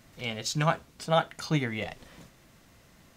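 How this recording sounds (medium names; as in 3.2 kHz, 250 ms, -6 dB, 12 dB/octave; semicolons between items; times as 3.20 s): noise floor -59 dBFS; spectral tilt -5.0 dB/octave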